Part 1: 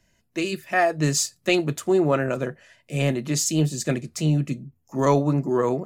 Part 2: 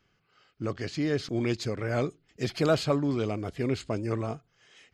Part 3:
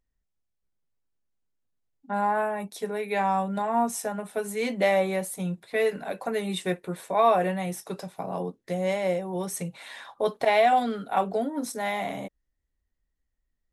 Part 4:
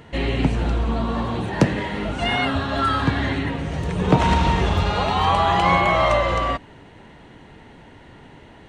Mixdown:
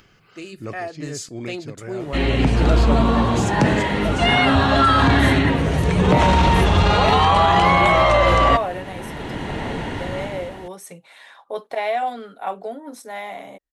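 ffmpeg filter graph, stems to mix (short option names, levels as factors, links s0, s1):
-filter_complex "[0:a]volume=0.316,asplit=2[s0][s1];[1:a]acompressor=mode=upward:threshold=0.00631:ratio=2.5,volume=1.19[s2];[2:a]bass=f=250:g=-11,treble=f=4000:g=-4,adelay=1300,volume=0.794[s3];[3:a]dynaudnorm=f=200:g=7:m=5.96,acrusher=bits=8:mix=0:aa=0.5,adelay=2000,volume=1.41[s4];[s1]apad=whole_len=217646[s5];[s2][s5]sidechaincompress=threshold=0.02:ratio=8:attack=16:release=875[s6];[s0][s4]amix=inputs=2:normalize=0,lowpass=f=12000:w=0.5412,lowpass=f=12000:w=1.3066,alimiter=limit=0.447:level=0:latency=1:release=15,volume=1[s7];[s6][s3][s7]amix=inputs=3:normalize=0"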